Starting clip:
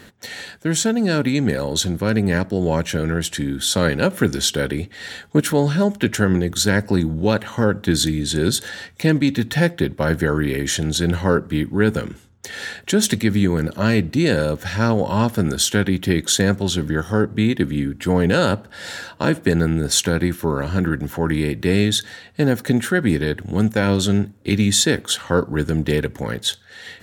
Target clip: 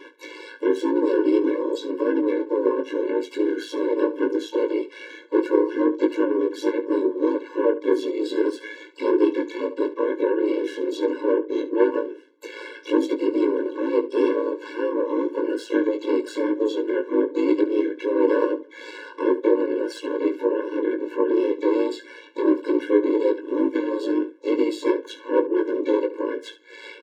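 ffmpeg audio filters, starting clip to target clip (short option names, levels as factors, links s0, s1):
-filter_complex "[0:a]afftfilt=real='re*pow(10,11/40*sin(2*PI*(1.3*log(max(b,1)*sr/1024/100)/log(2)-(1.4)*(pts-256)/sr)))':imag='im*pow(10,11/40*sin(2*PI*(1.3*log(max(b,1)*sr/1024/100)/log(2)-(1.4)*(pts-256)/sr)))':win_size=1024:overlap=0.75,lowpass=2300,adynamicequalizer=threshold=0.00891:dfrequency=1700:dqfactor=4.5:tfrequency=1700:tqfactor=4.5:attack=5:release=100:ratio=0.375:range=2:mode=cutabove:tftype=bell,acrossover=split=550[s0][s1];[s0]asoftclip=type=tanh:threshold=0.178[s2];[s1]acompressor=threshold=0.0112:ratio=8[s3];[s2][s3]amix=inputs=2:normalize=0,asplit=4[s4][s5][s6][s7];[s5]asetrate=35002,aresample=44100,atempo=1.25992,volume=0.178[s8];[s6]asetrate=55563,aresample=44100,atempo=0.793701,volume=0.631[s9];[s7]asetrate=88200,aresample=44100,atempo=0.5,volume=0.224[s10];[s4][s8][s9][s10]amix=inputs=4:normalize=0,aeval=exprs='val(0)*sin(2*PI*55*n/s)':c=same,aecho=1:1:19|71:0.447|0.168,afftfilt=real='re*eq(mod(floor(b*sr/1024/290),2),1)':imag='im*eq(mod(floor(b*sr/1024/290),2),1)':win_size=1024:overlap=0.75,volume=2"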